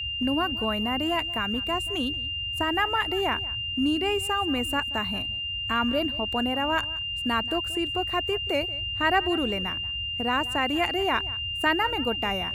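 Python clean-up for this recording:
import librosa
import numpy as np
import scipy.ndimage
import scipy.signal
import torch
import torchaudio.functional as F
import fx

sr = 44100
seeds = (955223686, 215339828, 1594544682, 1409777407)

y = fx.notch(x, sr, hz=2800.0, q=30.0)
y = fx.noise_reduce(y, sr, print_start_s=5.19, print_end_s=5.69, reduce_db=30.0)
y = fx.fix_echo_inverse(y, sr, delay_ms=180, level_db=-19.5)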